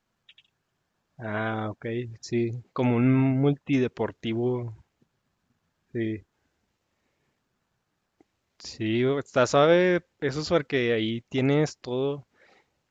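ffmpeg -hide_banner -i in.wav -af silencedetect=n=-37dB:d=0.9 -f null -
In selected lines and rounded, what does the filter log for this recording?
silence_start: 0.00
silence_end: 1.20 | silence_duration: 1.20
silence_start: 4.72
silence_end: 5.95 | silence_duration: 1.22
silence_start: 6.19
silence_end: 8.60 | silence_duration: 2.42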